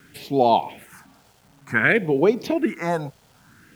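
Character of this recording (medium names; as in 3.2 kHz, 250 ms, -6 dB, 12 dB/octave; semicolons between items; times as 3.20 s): phasing stages 4, 0.55 Hz, lowest notch 290–1700 Hz; a quantiser's noise floor 10-bit, dither none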